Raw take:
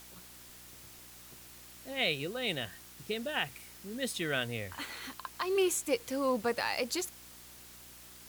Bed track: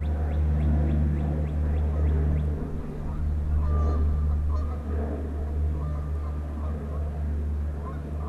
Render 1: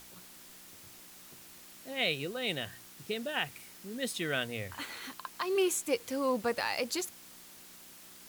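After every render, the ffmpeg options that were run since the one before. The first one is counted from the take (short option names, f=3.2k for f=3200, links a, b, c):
-af "bandreject=f=60:t=h:w=4,bandreject=f=120:t=h:w=4"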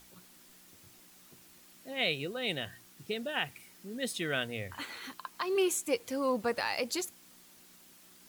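-af "afftdn=nr=6:nf=-53"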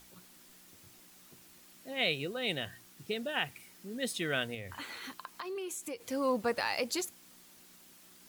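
-filter_complex "[0:a]asettb=1/sr,asplit=3[a][b][c];[a]atrim=end=4.544[d];[b]atrim=start=4.54:end=6.04,asetpts=PTS-STARTPTS,afade=t=in:d=0.004:c=qsin,afade=t=out:st=1.496:d=0.004:c=qsin,acompressor=threshold=-37dB:ratio=6:attack=3.2:release=140:knee=1:detection=peak[e];[c]atrim=start=6.036[f];[d][e]acrossfade=d=0.004:c1=hsin:c2=qsin[g];[g][f]acrossfade=d=0.004:c1=qsin:c2=hsin"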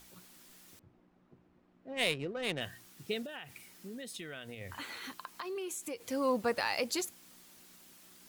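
-filter_complex "[0:a]asettb=1/sr,asplit=3[a][b][c];[a]atrim=end=0.794[d];[b]atrim=start=0.79:end=2.61,asetpts=PTS-STARTPTS,afade=t=in:d=0.004:c=qsin,afade=t=out:st=1.816:d=0.004:c=qsin,adynamicsmooth=sensitivity=4.5:basefreq=920[e];[c]atrim=start=2.606[f];[d][e]acrossfade=d=0.004:c1=hsin:c2=qsin[g];[g][f]acrossfade=d=0.004:c1=qsin:c2=hsin,asettb=1/sr,asplit=3[h][i][j];[h]atrim=end=3.224[k];[i]atrim=start=3.22:end=4.61,asetpts=PTS-STARTPTS,afade=t=in:d=0.004:c=qsin,afade=t=out:st=1.386:d=0.004:c=qsin,acompressor=threshold=-40dB:ratio=12:attack=3.2:release=140:knee=1:detection=peak[l];[j]atrim=start=4.606[m];[k][l]acrossfade=d=0.004:c1=hsin:c2=qsin[n];[n][m]acrossfade=d=0.004:c1=qsin:c2=hsin"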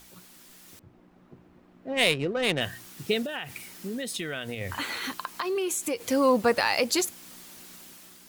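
-filter_complex "[0:a]dynaudnorm=f=600:g=3:m=6dB,asplit=2[a][b];[b]alimiter=limit=-21dB:level=0:latency=1:release=379,volume=-2dB[c];[a][c]amix=inputs=2:normalize=0"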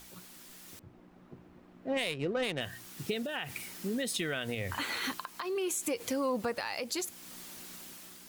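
-af "acompressor=threshold=-25dB:ratio=6,alimiter=limit=-22.5dB:level=0:latency=1:release=488"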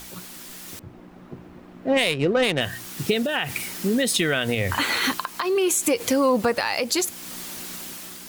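-af "volume=12dB"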